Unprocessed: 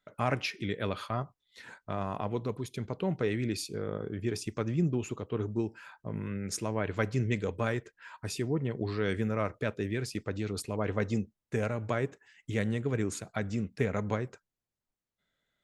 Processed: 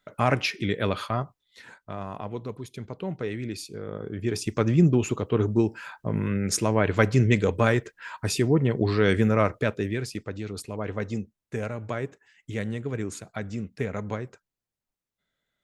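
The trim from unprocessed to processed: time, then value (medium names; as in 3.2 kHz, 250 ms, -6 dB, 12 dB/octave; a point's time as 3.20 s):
0.99 s +7 dB
1.92 s -1 dB
3.82 s -1 dB
4.65 s +9.5 dB
9.40 s +9.5 dB
10.35 s 0 dB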